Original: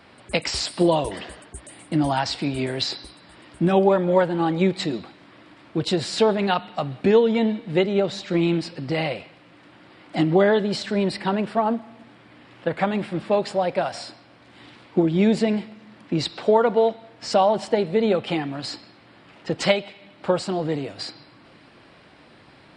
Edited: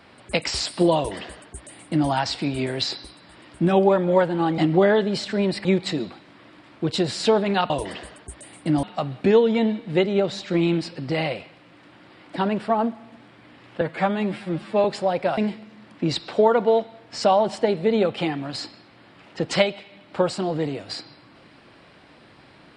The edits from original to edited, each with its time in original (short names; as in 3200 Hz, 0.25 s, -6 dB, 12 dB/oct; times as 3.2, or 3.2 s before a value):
0.96–2.09 copy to 6.63
10.16–11.23 move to 4.58
12.68–13.37 stretch 1.5×
13.9–15.47 cut